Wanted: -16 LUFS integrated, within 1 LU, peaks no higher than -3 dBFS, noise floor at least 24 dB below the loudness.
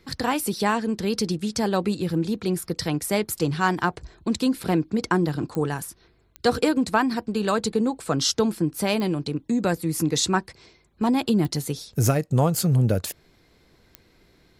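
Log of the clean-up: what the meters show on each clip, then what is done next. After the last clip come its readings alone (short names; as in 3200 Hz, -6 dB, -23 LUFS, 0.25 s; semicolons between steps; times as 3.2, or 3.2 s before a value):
clicks 5; loudness -24.0 LUFS; peak -7.0 dBFS; loudness target -16.0 LUFS
-> de-click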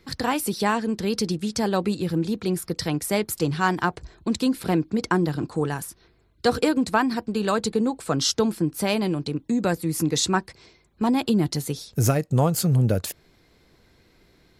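clicks 0; loudness -24.0 LUFS; peak -7.0 dBFS; loudness target -16.0 LUFS
-> gain +8 dB; limiter -3 dBFS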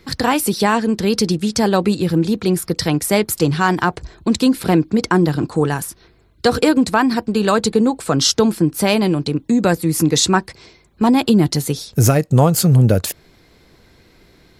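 loudness -16.5 LUFS; peak -3.0 dBFS; noise floor -52 dBFS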